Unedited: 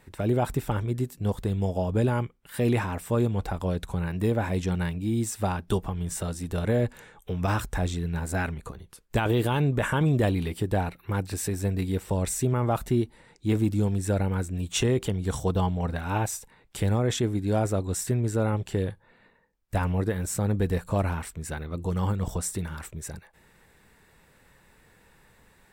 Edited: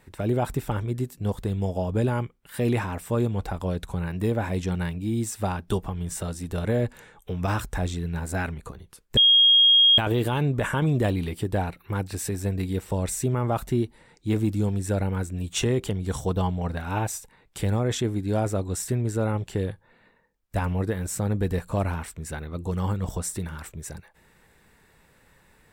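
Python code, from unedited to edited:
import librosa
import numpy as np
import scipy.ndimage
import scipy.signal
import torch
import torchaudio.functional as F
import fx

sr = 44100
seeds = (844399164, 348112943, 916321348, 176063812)

y = fx.edit(x, sr, fx.insert_tone(at_s=9.17, length_s=0.81, hz=3260.0, db=-13.0), tone=tone)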